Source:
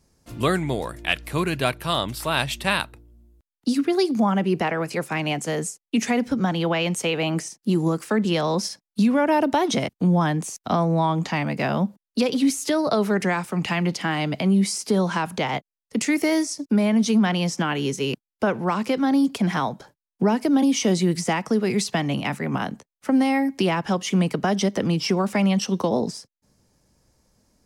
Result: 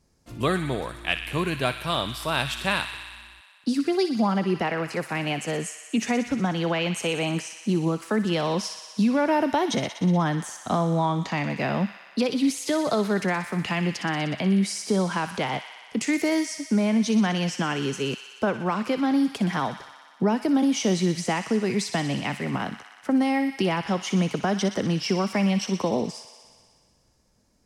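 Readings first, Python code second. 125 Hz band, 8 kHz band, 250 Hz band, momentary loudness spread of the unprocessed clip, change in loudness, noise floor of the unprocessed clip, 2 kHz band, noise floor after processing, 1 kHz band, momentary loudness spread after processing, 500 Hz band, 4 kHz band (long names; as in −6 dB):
−2.5 dB, −3.0 dB, −2.5 dB, 7 LU, −2.5 dB, below −85 dBFS, −2.0 dB, −57 dBFS, −2.5 dB, 7 LU, −2.5 dB, −2.0 dB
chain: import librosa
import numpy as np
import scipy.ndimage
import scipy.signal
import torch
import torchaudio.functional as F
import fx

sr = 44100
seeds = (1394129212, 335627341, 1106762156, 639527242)

p1 = fx.high_shelf(x, sr, hz=10000.0, db=-7.0)
p2 = p1 + fx.echo_wet_highpass(p1, sr, ms=61, feedback_pct=80, hz=1500.0, wet_db=-9, dry=0)
y = F.gain(torch.from_numpy(p2), -2.5).numpy()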